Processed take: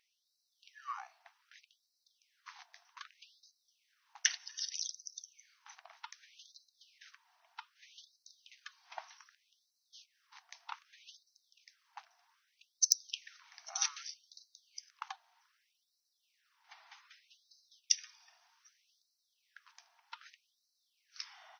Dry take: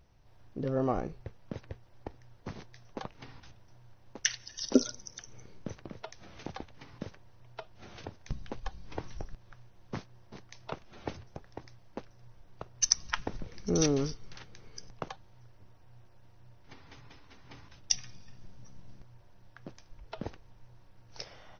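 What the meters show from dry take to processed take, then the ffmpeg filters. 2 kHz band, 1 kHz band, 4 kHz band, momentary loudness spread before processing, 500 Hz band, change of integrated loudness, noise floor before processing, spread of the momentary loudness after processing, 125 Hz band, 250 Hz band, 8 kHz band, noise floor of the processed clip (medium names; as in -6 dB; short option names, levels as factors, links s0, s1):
-3.0 dB, -6.5 dB, -1.5 dB, 23 LU, -30.5 dB, -1.5 dB, -58 dBFS, 23 LU, under -40 dB, under -40 dB, no reading, -82 dBFS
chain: -af "aeval=exprs='0.447*(abs(mod(val(0)/0.447+3,4)-2)-1)':c=same,afftfilt=real='re*gte(b*sr/1024,630*pow(3900/630,0.5+0.5*sin(2*PI*0.64*pts/sr)))':imag='im*gte(b*sr/1024,630*pow(3900/630,0.5+0.5*sin(2*PI*0.64*pts/sr)))':win_size=1024:overlap=0.75,volume=0.891"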